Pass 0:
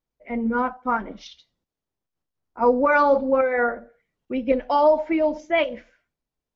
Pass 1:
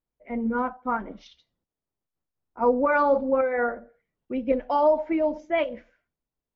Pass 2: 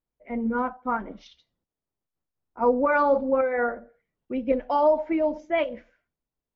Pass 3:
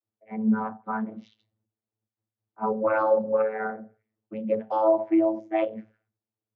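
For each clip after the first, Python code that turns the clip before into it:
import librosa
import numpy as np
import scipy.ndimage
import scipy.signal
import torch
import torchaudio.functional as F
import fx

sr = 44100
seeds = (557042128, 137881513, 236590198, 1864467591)

y1 = fx.high_shelf(x, sr, hz=2700.0, db=-9.5)
y1 = F.gain(torch.from_numpy(y1), -2.5).numpy()
y2 = y1
y3 = fx.vocoder(y2, sr, bands=32, carrier='saw', carrier_hz=109.0)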